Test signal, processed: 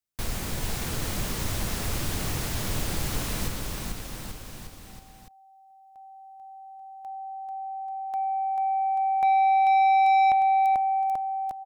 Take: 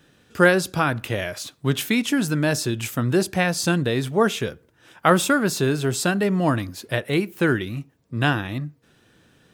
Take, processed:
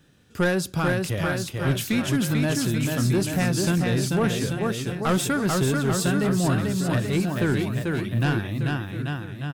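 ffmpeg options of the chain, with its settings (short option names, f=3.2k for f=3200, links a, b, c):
-filter_complex "[0:a]asplit=2[a][b];[b]aecho=0:1:440|836|1192|1513|1802:0.631|0.398|0.251|0.158|0.1[c];[a][c]amix=inputs=2:normalize=0,asoftclip=type=tanh:threshold=-12dB,bass=f=250:g=7,treble=f=4k:g=3,volume=-5dB"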